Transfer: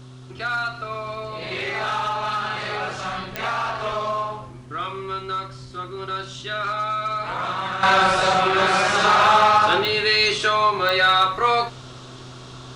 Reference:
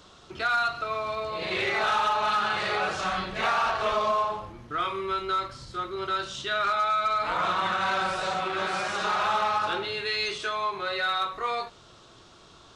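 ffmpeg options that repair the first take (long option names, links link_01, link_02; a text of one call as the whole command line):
ffmpeg -i in.wav -af "adeclick=threshold=4,bandreject=frequency=127.2:width_type=h:width=4,bandreject=frequency=254.4:width_type=h:width=4,bandreject=frequency=381.6:width_type=h:width=4,agate=range=-21dB:threshold=-31dB,asetnsamples=nb_out_samples=441:pad=0,asendcmd='7.83 volume volume -10.5dB',volume=0dB" out.wav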